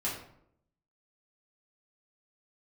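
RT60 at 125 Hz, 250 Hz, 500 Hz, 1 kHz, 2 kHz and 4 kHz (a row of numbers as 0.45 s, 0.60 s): 0.90 s, 0.85 s, 0.75 s, 0.65 s, 0.55 s, 0.40 s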